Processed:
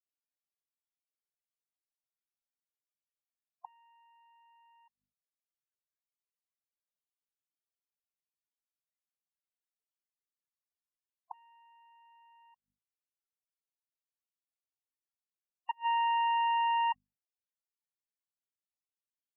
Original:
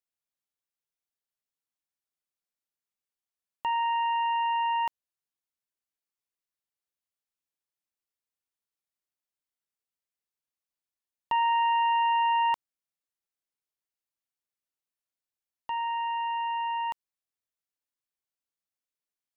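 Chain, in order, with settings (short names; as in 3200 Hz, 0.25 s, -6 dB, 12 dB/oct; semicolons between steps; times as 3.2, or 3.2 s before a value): notches 50/100/150/200/250 Hz; flipped gate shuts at -27 dBFS, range -39 dB; loudest bins only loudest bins 16; gain +1.5 dB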